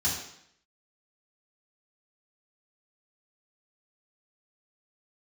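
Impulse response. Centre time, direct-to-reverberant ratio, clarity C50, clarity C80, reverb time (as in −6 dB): 44 ms, −8.0 dB, 3.5 dB, 6.5 dB, 0.70 s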